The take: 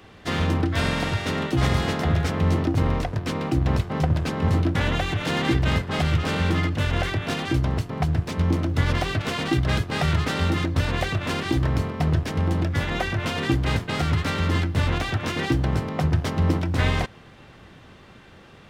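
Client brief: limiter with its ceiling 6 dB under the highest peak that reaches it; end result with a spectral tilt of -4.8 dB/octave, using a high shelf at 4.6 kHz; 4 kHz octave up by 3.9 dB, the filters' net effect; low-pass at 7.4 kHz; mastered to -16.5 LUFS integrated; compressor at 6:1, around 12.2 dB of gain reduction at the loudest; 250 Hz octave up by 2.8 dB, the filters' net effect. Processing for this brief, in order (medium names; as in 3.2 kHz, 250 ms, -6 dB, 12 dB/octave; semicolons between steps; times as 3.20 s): low-pass 7.4 kHz; peaking EQ 250 Hz +4 dB; peaking EQ 4 kHz +9 dB; treble shelf 4.6 kHz -8 dB; compression 6:1, threshold -29 dBFS; trim +17 dB; peak limiter -6.5 dBFS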